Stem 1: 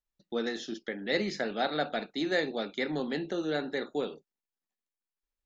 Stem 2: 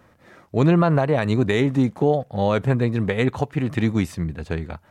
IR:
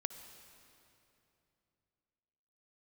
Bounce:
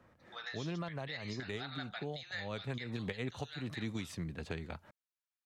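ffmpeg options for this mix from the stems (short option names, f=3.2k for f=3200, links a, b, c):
-filter_complex "[0:a]highpass=f=930:w=0.5412,highpass=f=930:w=1.3066,volume=-2.5dB,asplit=2[a][b];[1:a]volume=-1.5dB,afade=t=in:st=2.48:d=0.54:silence=0.398107[c];[b]apad=whole_len=216398[d];[c][d]sidechaincompress=threshold=-47dB:ratio=4:attack=8:release=105[e];[a][e]amix=inputs=2:normalize=0,highshelf=f=6.1k:g=-8.5,acrossover=split=150|2500[f][g][h];[f]acompressor=threshold=-48dB:ratio=4[i];[g]acompressor=threshold=-42dB:ratio=4[j];[h]acompressor=threshold=-45dB:ratio=4[k];[i][j][k]amix=inputs=3:normalize=0"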